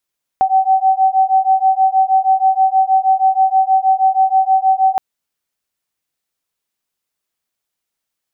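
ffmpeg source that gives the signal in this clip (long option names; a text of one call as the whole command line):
ffmpeg -f lavfi -i "aevalsrc='0.224*(sin(2*PI*761*t)+sin(2*PI*767.3*t))':duration=4.57:sample_rate=44100" out.wav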